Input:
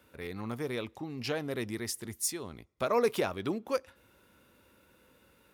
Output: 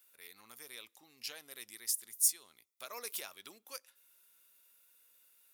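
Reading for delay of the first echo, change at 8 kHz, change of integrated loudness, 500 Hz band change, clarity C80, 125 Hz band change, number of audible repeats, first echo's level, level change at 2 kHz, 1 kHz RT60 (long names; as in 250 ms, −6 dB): no echo audible, +4.0 dB, −3.0 dB, −23.0 dB, no reverb audible, below −30 dB, no echo audible, no echo audible, −10.5 dB, no reverb audible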